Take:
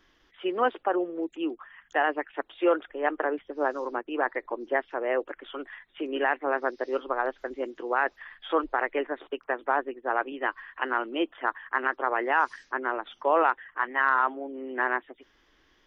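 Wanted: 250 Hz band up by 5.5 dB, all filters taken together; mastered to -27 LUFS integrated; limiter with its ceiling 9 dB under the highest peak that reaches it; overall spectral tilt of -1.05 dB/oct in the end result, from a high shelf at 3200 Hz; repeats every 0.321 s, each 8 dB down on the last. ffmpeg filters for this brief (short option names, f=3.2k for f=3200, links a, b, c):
-af "equalizer=f=250:t=o:g=8,highshelf=f=3.2k:g=5,alimiter=limit=-18dB:level=0:latency=1,aecho=1:1:321|642|963|1284|1605:0.398|0.159|0.0637|0.0255|0.0102,volume=3dB"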